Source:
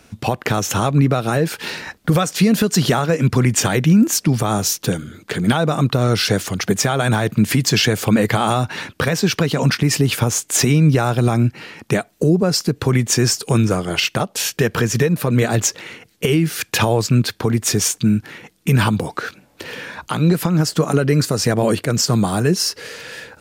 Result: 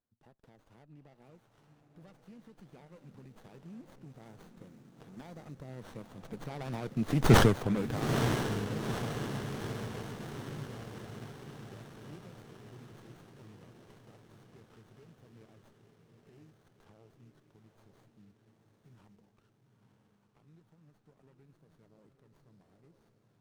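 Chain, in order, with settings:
source passing by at 0:07.36, 19 m/s, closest 1.1 metres
feedback delay with all-pass diffusion 917 ms, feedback 56%, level −6.5 dB
windowed peak hold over 17 samples

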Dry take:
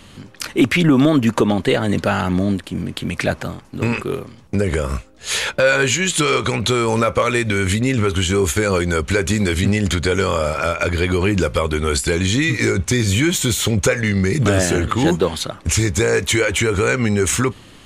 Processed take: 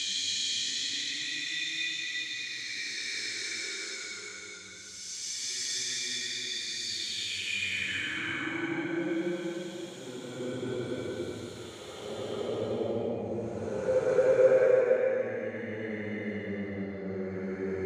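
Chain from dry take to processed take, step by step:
extreme stretch with random phases 8.9×, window 0.25 s, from 0:12.26
band-pass filter sweep 4,600 Hz → 600 Hz, 0:06.85–0:09.10
level −3 dB

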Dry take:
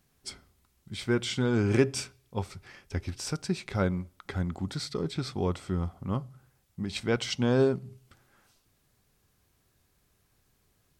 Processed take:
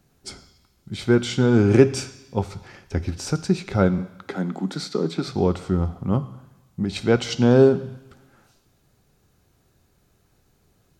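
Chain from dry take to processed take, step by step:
0:03.98–0:05.28: Butterworth high-pass 170 Hz
convolution reverb RT60 1.1 s, pre-delay 3 ms, DRR 14 dB
level +7.5 dB

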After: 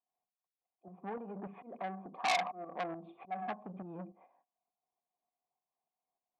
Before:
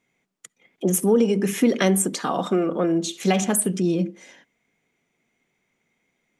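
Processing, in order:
noise gate −43 dBFS, range −16 dB
dynamic equaliser 180 Hz, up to +7 dB, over −35 dBFS, Q 1.5
volume swells 749 ms
downward compressor 4 to 1, threshold −27 dBFS, peak gain reduction 12 dB
shaped tremolo saw up 3.4 Hz, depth 55%
formant resonators in series a
saturating transformer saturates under 3,500 Hz
level +14 dB

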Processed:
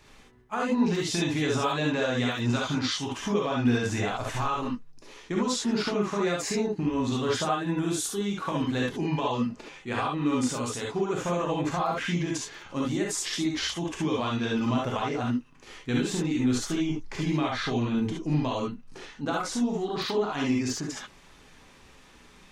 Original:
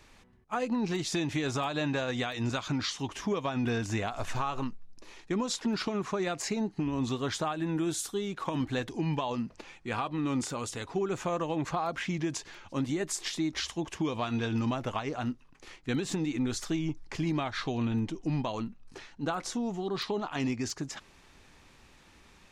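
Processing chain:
reverb whose tail is shaped and stops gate 90 ms rising, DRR −2.5 dB

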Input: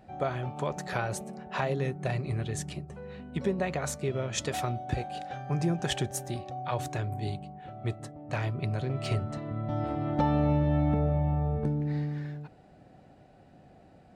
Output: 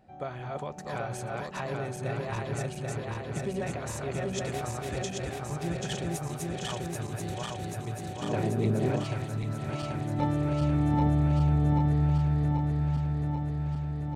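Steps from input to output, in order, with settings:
feedback delay that plays each chunk backwards 393 ms, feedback 82%, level −1 dB
0:08.22–0:09.04: hollow resonant body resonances 240/410 Hz, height 12 dB, ringing for 20 ms
level −6 dB

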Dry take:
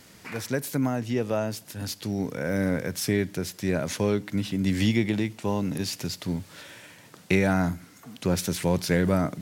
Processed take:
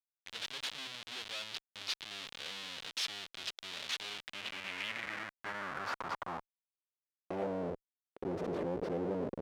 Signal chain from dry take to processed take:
comparator with hysteresis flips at −31 dBFS
band-pass filter sweep 3,500 Hz → 440 Hz, 0:04.04–0:07.85
level +1 dB

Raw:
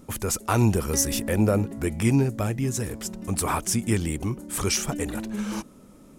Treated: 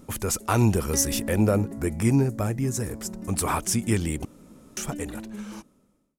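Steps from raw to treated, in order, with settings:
fade-out on the ending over 1.75 s
0:01.57–0:03.29: parametric band 3,100 Hz −7.5 dB 0.82 octaves
0:04.25–0:04.77: fill with room tone

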